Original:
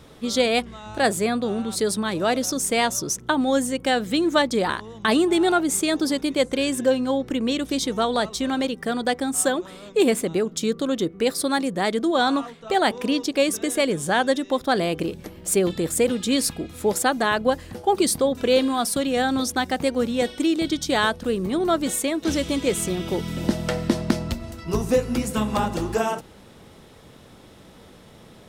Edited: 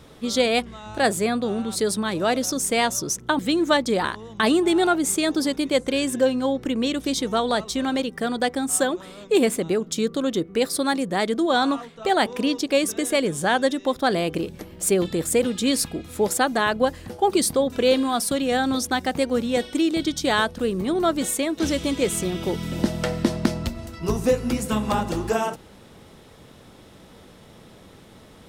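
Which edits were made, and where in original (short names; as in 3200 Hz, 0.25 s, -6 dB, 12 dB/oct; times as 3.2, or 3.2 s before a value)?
3.39–4.04 cut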